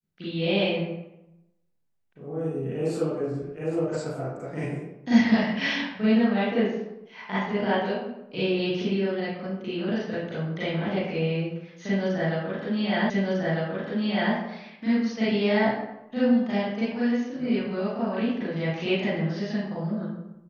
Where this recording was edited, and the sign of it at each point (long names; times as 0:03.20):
0:13.10: the same again, the last 1.25 s